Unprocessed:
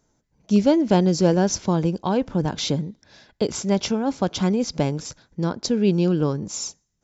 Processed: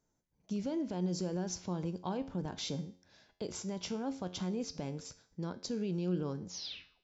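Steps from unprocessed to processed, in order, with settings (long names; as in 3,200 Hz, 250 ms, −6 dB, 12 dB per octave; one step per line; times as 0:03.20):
turntable brake at the end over 0.56 s
brickwall limiter −15 dBFS, peak gain reduction 10.5 dB
tuned comb filter 90 Hz, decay 0.52 s, harmonics all, mix 60%
level −7 dB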